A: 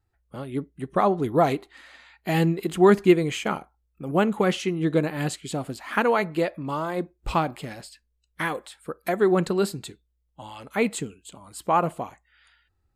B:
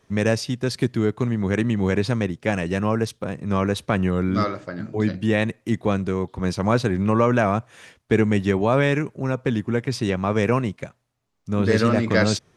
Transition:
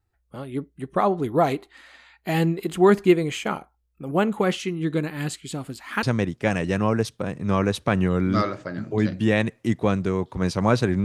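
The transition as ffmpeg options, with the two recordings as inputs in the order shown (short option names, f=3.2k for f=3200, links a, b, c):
-filter_complex "[0:a]asettb=1/sr,asplit=3[a][b][c];[a]atrim=end=4.554[d];[b]atrim=start=4.55:end=6.03,asetpts=PTS-STARTPTS,afade=t=in:d=0.004:c=qsin,afade=t=out:st=1.476:d=0.004:c=qsin,equalizer=f=640:t=o:w=1.1:g=-7.5[e];[c]atrim=start=6.026[f];[d][e]acrossfade=d=0.004:c1=hsin:c2=qsin[g];[g][f]acrossfade=d=0.004:c1=qsin:c2=hsin,apad=whole_dur=11.04,atrim=end=11.04,atrim=end=6.032[h];[1:a]atrim=start=2.048:end=7.06[i];[h][i]acrossfade=d=0.004:c1=hsin:c2=hsin"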